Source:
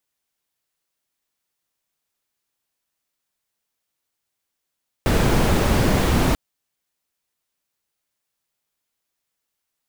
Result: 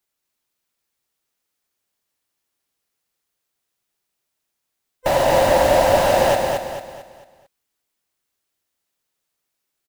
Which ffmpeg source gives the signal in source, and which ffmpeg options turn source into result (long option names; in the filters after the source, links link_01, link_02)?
-f lavfi -i "anoisesrc=color=brown:amplitude=0.661:duration=1.29:sample_rate=44100:seed=1"
-af "afftfilt=real='real(if(lt(b,1008),b+24*(1-2*mod(floor(b/24),2)),b),0)':imag='imag(if(lt(b,1008),b+24*(1-2*mod(floor(b/24),2)),b),0)':win_size=2048:overlap=0.75,equalizer=frequency=380:width_type=o:width=0.77:gain=2,aecho=1:1:223|446|669|892|1115:0.631|0.252|0.101|0.0404|0.0162"